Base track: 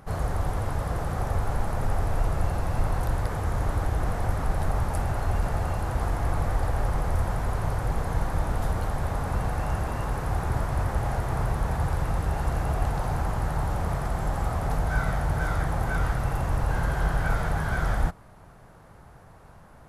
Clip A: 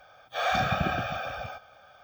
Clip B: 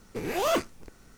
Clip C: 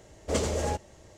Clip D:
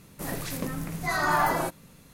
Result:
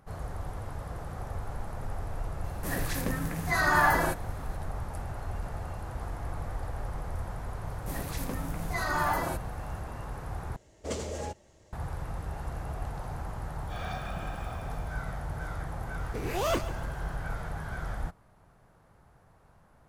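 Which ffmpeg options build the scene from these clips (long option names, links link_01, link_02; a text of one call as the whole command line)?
ffmpeg -i bed.wav -i cue0.wav -i cue1.wav -i cue2.wav -i cue3.wav -filter_complex "[4:a]asplit=2[link_01][link_02];[0:a]volume=-10dB[link_03];[link_01]equalizer=frequency=1700:width=6.1:gain=9[link_04];[2:a]aecho=1:1:142|284|426|568:0.2|0.0838|0.0352|0.0148[link_05];[link_03]asplit=2[link_06][link_07];[link_06]atrim=end=10.564[link_08];[3:a]atrim=end=1.17,asetpts=PTS-STARTPTS,volume=-7dB[link_09];[link_07]atrim=start=11.726[link_10];[link_04]atrim=end=2.13,asetpts=PTS-STARTPTS,volume=-1dB,afade=type=in:duration=0.004:curve=hsin,afade=type=out:start_time=2.126:duration=0.004:curve=hsin,adelay=2440[link_11];[link_02]atrim=end=2.13,asetpts=PTS-STARTPTS,volume=-5dB,afade=type=in:duration=0.004:curve=hsin,afade=type=out:start_time=2.126:duration=0.004:curve=hsin,adelay=7670[link_12];[1:a]atrim=end=2.03,asetpts=PTS-STARTPTS,volume=-13.5dB,afade=type=in:duration=0.004:curve=hsin,afade=type=out:start_time=2.026:duration=0.004:curve=hsin,adelay=13360[link_13];[link_05]atrim=end=1.17,asetpts=PTS-STARTPTS,volume=-3.5dB,afade=type=in:duration=0.004:curve=hsin,afade=type=out:start_time=1.166:duration=0.004:curve=hsin,adelay=15990[link_14];[link_08][link_09]acrossfade=duration=0.004:curve1=hsin:curve2=hsin[link_15];[link_15][link_10]acrossfade=duration=0.004:curve1=hsin:curve2=hsin[link_16];[link_16][link_11][link_12][link_13][link_14]amix=inputs=5:normalize=0" out.wav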